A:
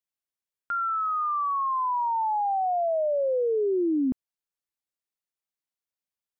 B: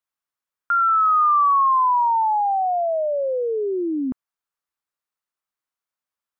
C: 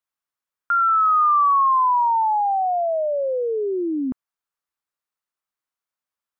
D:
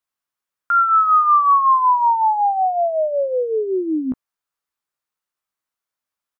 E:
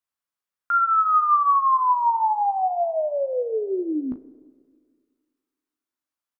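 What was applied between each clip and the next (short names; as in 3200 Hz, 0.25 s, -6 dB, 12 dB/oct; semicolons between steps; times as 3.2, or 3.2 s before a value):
bell 1200 Hz +10.5 dB 1.2 oct
nothing audible
doubler 16 ms -8 dB; gain +2 dB
doubler 36 ms -12 dB; Schroeder reverb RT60 1.9 s, combs from 33 ms, DRR 17.5 dB; gain -5 dB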